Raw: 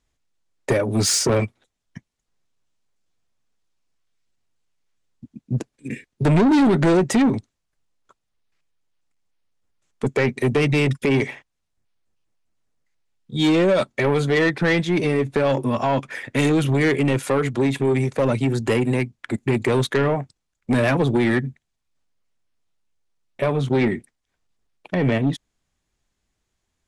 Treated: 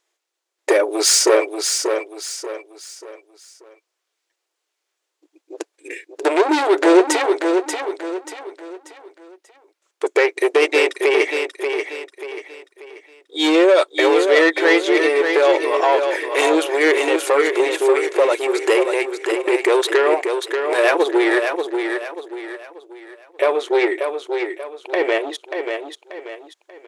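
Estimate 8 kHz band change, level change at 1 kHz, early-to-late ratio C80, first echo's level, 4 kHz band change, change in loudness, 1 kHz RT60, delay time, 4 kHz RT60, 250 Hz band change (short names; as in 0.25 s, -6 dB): +6.5 dB, +6.5 dB, none, -6.0 dB, +6.5 dB, +3.0 dB, none, 0.586 s, none, -1.0 dB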